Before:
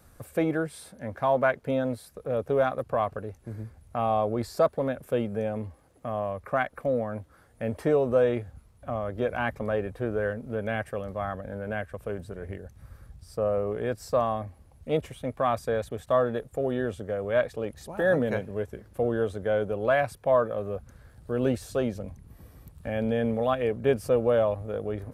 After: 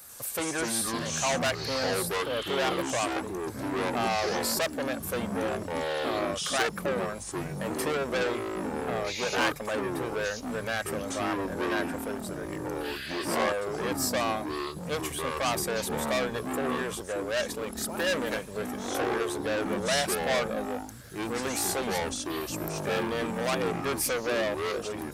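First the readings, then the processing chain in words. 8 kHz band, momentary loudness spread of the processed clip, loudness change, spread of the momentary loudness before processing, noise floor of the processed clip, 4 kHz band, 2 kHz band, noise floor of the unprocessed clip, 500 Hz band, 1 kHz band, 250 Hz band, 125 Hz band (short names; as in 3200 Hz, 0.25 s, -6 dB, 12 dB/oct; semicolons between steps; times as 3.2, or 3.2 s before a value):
n/a, 6 LU, -1.5 dB, 13 LU, -39 dBFS, +14.0 dB, +4.0 dB, -57 dBFS, -4.0 dB, 0.0 dB, -0.5 dB, -5.0 dB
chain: soft clip -27.5 dBFS, distortion -7 dB; tilt +4 dB/oct; echoes that change speed 93 ms, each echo -6 st, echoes 3; gain +4 dB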